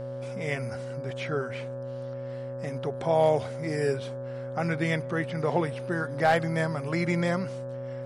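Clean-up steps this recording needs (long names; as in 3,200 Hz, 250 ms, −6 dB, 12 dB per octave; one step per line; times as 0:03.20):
clipped peaks rebuilt −13.5 dBFS
hum removal 125.3 Hz, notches 14
notch filter 550 Hz, Q 30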